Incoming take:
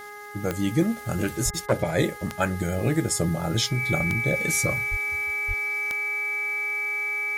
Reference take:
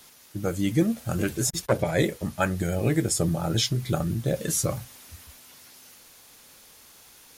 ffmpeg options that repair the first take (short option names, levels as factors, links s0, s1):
-filter_complex "[0:a]adeclick=t=4,bandreject=f=414:t=h:w=4,bandreject=f=828:t=h:w=4,bandreject=f=1242:t=h:w=4,bandreject=f=1656:t=h:w=4,bandreject=f=2070:t=h:w=4,bandreject=f=2300:w=30,asplit=3[s0][s1][s2];[s0]afade=t=out:st=1.44:d=0.02[s3];[s1]highpass=f=140:w=0.5412,highpass=f=140:w=1.3066,afade=t=in:st=1.44:d=0.02,afade=t=out:st=1.56:d=0.02[s4];[s2]afade=t=in:st=1.56:d=0.02[s5];[s3][s4][s5]amix=inputs=3:normalize=0,asplit=3[s6][s7][s8];[s6]afade=t=out:st=4.9:d=0.02[s9];[s7]highpass=f=140:w=0.5412,highpass=f=140:w=1.3066,afade=t=in:st=4.9:d=0.02,afade=t=out:st=5.02:d=0.02[s10];[s8]afade=t=in:st=5.02:d=0.02[s11];[s9][s10][s11]amix=inputs=3:normalize=0,asplit=3[s12][s13][s14];[s12]afade=t=out:st=5.47:d=0.02[s15];[s13]highpass=f=140:w=0.5412,highpass=f=140:w=1.3066,afade=t=in:st=5.47:d=0.02,afade=t=out:st=5.59:d=0.02[s16];[s14]afade=t=in:st=5.59:d=0.02[s17];[s15][s16][s17]amix=inputs=3:normalize=0"